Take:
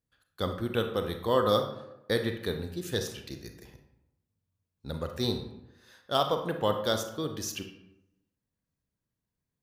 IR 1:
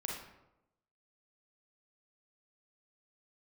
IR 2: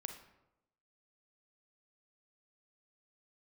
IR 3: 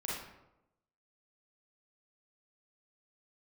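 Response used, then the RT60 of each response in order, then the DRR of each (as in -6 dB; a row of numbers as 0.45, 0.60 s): 2; 0.90, 0.90, 0.90 s; -2.0, 5.5, -6.5 dB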